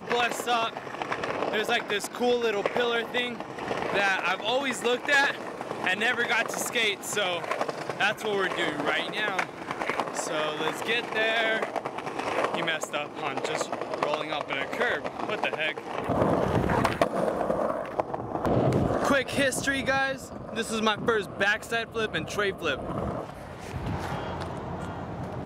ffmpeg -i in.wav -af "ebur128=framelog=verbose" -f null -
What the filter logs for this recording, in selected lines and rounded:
Integrated loudness:
  I:         -27.6 LUFS
  Threshold: -37.7 LUFS
Loudness range:
  LRA:         3.6 LU
  Threshold: -47.5 LUFS
  LRA low:   -29.5 LUFS
  LRA high:  -25.9 LUFS